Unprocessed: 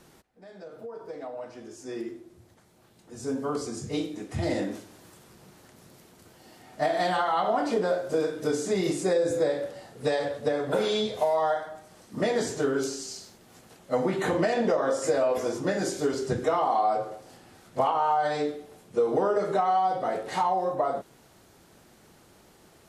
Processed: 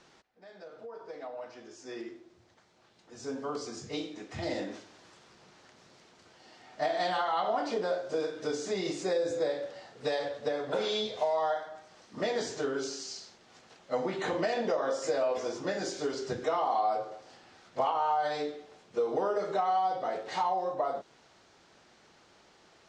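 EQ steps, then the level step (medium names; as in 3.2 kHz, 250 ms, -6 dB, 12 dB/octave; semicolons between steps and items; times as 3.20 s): low-pass 6.2 kHz 24 dB/octave; bass shelf 380 Hz -12 dB; dynamic bell 1.6 kHz, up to -4 dB, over -42 dBFS, Q 0.75; 0.0 dB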